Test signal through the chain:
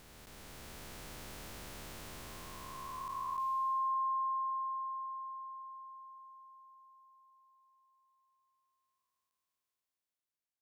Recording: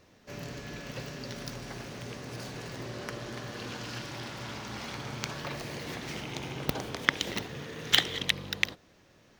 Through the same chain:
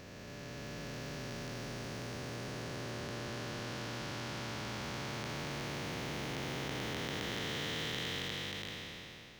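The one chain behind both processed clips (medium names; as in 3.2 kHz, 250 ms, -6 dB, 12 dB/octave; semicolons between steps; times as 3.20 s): spectral blur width 1200 ms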